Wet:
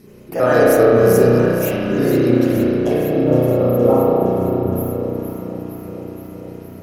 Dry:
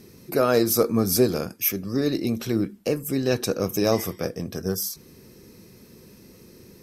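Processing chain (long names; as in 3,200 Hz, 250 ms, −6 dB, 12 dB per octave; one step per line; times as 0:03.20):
pitch shifter gated in a rhythm +3 semitones, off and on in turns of 66 ms
high-shelf EQ 4,200 Hz −11 dB
gain on a spectral selection 0:03.03–0:05.00, 1,400–11,000 Hz −28 dB
parametric band 11,000 Hz +11 dB 0.37 octaves
delay that swaps between a low-pass and a high-pass 233 ms, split 880 Hz, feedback 83%, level −8 dB
spring reverb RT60 2.2 s, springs 33 ms, chirp 65 ms, DRR −7 dB
level +1.5 dB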